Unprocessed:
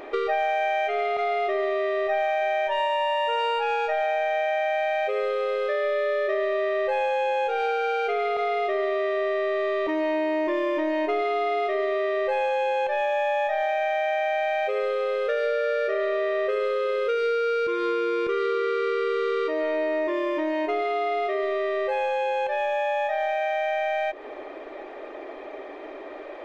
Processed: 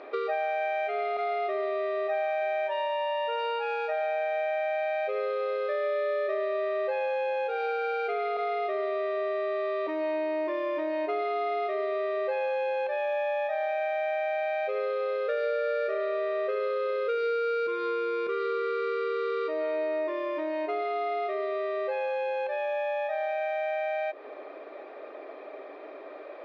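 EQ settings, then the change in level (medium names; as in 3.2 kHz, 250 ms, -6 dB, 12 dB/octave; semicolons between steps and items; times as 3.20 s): cabinet simulation 310–4600 Hz, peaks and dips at 350 Hz -5 dB, 860 Hz -6 dB, 1.9 kHz -6 dB, 3.1 kHz -8 dB; -2.0 dB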